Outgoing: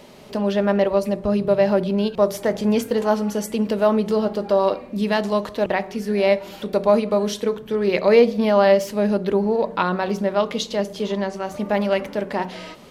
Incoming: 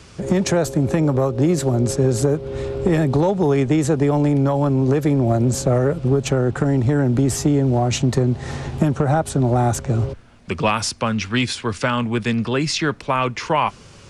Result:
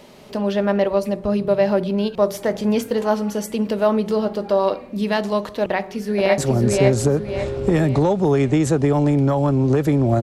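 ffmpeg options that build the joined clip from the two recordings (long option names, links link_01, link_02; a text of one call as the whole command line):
ffmpeg -i cue0.wav -i cue1.wav -filter_complex "[0:a]apad=whole_dur=10.22,atrim=end=10.22,atrim=end=6.382[link_01];[1:a]atrim=start=1.558:end=5.4[link_02];[link_01][link_02]acrossfade=duration=0.004:curve1=hsin:curve2=hsin,asplit=2[link_03][link_04];[link_04]afade=type=in:start_time=5.63:duration=0.01,afade=type=out:start_time=6.38:duration=0.01,aecho=0:1:550|1100|1650|2200|2750:0.794328|0.317731|0.127093|0.050837|0.0203348[link_05];[link_03][link_05]amix=inputs=2:normalize=0" out.wav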